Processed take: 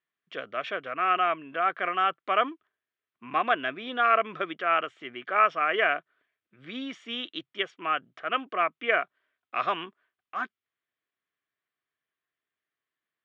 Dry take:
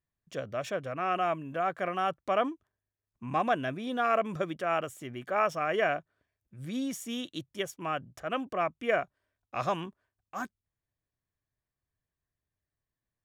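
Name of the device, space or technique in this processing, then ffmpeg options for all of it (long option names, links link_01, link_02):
phone earpiece: -af "highpass=430,equalizer=frequency=560:width_type=q:width=4:gain=-8,equalizer=frequency=870:width_type=q:width=4:gain=-8,equalizer=frequency=1300:width_type=q:width=4:gain=4,equalizer=frequency=2100:width_type=q:width=4:gain=3,equalizer=frequency=3200:width_type=q:width=4:gain=4,lowpass=frequency=3500:width=0.5412,lowpass=frequency=3500:width=1.3066,volume=5.5dB"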